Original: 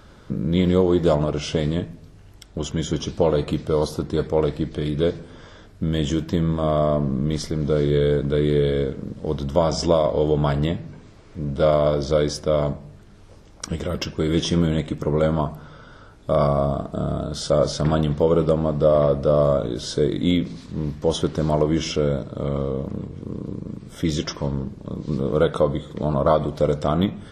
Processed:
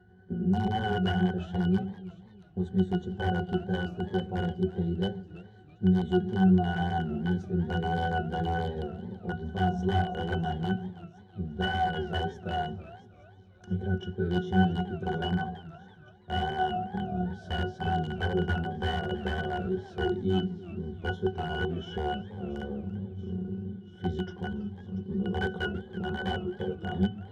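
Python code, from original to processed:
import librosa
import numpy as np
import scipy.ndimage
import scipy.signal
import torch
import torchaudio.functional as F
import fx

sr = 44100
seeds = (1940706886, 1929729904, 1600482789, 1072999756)

p1 = fx.pitch_glide(x, sr, semitones=3.0, runs='ending unshifted')
p2 = scipy.signal.sosfilt(scipy.signal.butter(2, 72.0, 'highpass', fs=sr, output='sos'), p1)
p3 = fx.quant_dither(p2, sr, seeds[0], bits=6, dither='none')
p4 = p2 + (p3 * 10.0 ** (-11.0 / 20.0))
p5 = fx.echo_wet_highpass(p4, sr, ms=684, feedback_pct=76, hz=2900.0, wet_db=-13.0)
p6 = (np.mod(10.0 ** (10.5 / 20.0) * p5 + 1.0, 2.0) - 1.0) / 10.0 ** (10.5 / 20.0)
p7 = fx.octave_resonator(p6, sr, note='F#', decay_s=0.17)
p8 = fx.wow_flutter(p7, sr, seeds[1], rate_hz=2.1, depth_cents=29.0)
p9 = fx.echo_warbled(p8, sr, ms=331, feedback_pct=31, rate_hz=2.8, cents=192, wet_db=-17.5)
y = p9 * 10.0 ** (3.0 / 20.0)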